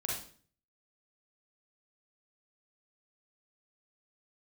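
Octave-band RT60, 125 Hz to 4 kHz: 0.70, 0.55, 0.50, 0.45, 0.45, 0.45 s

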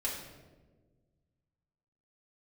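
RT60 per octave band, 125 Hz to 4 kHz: 2.4, 2.0, 1.7, 1.1, 0.90, 0.75 s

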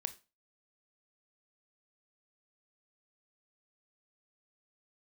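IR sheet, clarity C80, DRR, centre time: 23.0 dB, 10.5 dB, 5 ms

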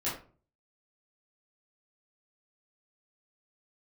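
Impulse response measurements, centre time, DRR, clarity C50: 36 ms, -10.0 dB, 5.5 dB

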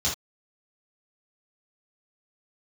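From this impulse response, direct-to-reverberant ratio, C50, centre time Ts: -7.0 dB, 6.0 dB, 29 ms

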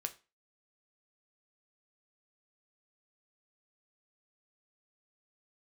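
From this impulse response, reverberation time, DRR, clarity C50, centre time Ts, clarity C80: 0.30 s, 6.5 dB, 17.0 dB, 6 ms, 23.0 dB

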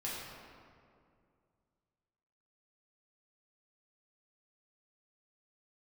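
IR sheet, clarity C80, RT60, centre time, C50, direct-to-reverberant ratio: 0.5 dB, 2.3 s, 0.118 s, -1.0 dB, -7.5 dB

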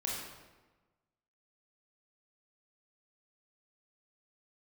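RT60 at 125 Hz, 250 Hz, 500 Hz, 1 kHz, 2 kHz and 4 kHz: 1.4, 1.4, 1.2, 1.2, 1.0, 0.85 s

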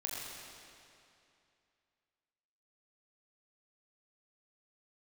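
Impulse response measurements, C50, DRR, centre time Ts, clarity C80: -1.5 dB, -4.5 dB, 0.148 s, -0.5 dB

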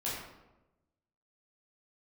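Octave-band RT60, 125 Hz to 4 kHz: 1.3, 1.2, 1.1, 0.90, 0.75, 0.60 s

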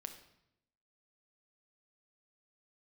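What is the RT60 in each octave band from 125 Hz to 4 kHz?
1.0, 1.0, 0.85, 0.75, 0.70, 0.70 s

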